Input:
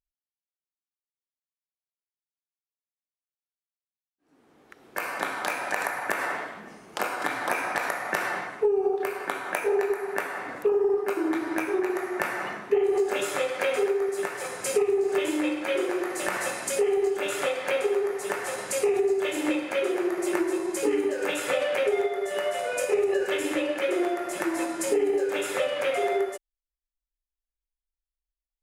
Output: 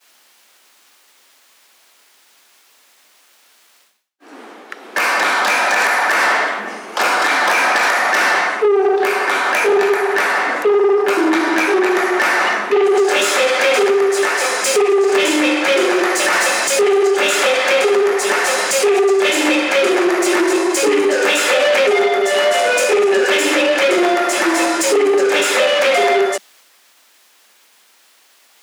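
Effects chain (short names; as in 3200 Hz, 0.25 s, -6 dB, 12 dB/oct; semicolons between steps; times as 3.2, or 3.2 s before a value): in parallel at +1 dB: limiter -18 dBFS, peak gain reduction 8 dB; on the sum: dynamic EQ 5500 Hz, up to +7 dB, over -45 dBFS, Q 0.99; overdrive pedal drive 21 dB, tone 4300 Hz, clips at -6 dBFS; reverse; upward compressor, threshold -25 dBFS; reverse; expander -46 dBFS; steep high-pass 190 Hz 72 dB/oct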